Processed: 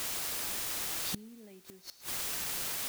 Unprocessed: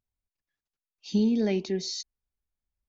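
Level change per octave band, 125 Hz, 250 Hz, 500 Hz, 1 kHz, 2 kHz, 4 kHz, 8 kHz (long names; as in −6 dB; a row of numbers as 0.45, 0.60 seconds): −13.5 dB, −21.0 dB, −17.5 dB, +5.5 dB, +5.5 dB, +0.5 dB, can't be measured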